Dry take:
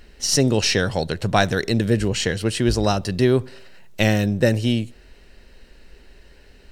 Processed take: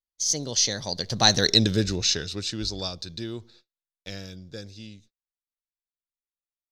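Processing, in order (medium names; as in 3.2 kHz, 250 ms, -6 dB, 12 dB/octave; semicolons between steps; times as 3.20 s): Doppler pass-by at 1.52 s, 35 m/s, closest 9.4 m; gate -54 dBFS, range -40 dB; high-order bell 4.8 kHz +14.5 dB 1.1 oct; trim -2 dB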